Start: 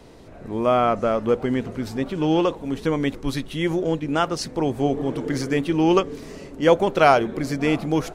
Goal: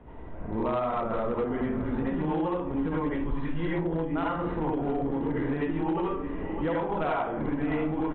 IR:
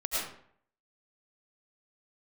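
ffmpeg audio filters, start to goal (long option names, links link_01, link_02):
-filter_complex "[0:a]equalizer=frequency=490:width_type=o:width=1.4:gain=-5.5,asplit=2[link_01][link_02];[link_02]acrusher=samples=9:mix=1:aa=0.000001,volume=-8dB[link_03];[link_01][link_03]amix=inputs=2:normalize=0,lowpass=1500,aecho=1:1:609:0.106[link_04];[1:a]atrim=start_sample=2205,asetrate=66150,aresample=44100[link_05];[link_04][link_05]afir=irnorm=-1:irlink=0,acompressor=threshold=-24dB:ratio=16,aresample=8000,volume=22dB,asoftclip=hard,volume=-22dB,aresample=44100"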